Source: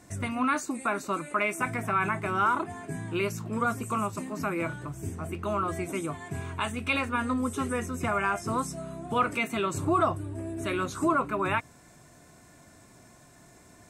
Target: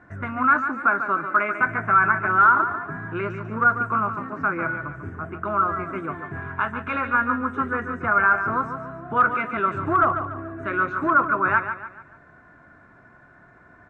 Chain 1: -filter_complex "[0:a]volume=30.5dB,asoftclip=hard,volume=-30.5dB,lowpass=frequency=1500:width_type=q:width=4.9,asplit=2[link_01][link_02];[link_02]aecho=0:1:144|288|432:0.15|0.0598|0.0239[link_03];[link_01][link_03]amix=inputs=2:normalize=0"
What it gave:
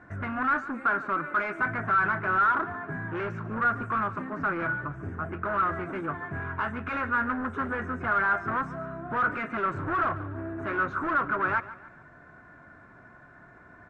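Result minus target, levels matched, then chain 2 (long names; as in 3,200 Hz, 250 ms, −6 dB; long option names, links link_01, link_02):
gain into a clipping stage and back: distortion +16 dB; echo-to-direct −7.5 dB
-filter_complex "[0:a]volume=19dB,asoftclip=hard,volume=-19dB,lowpass=frequency=1500:width_type=q:width=4.9,asplit=2[link_01][link_02];[link_02]aecho=0:1:144|288|432|576:0.355|0.142|0.0568|0.0227[link_03];[link_01][link_03]amix=inputs=2:normalize=0"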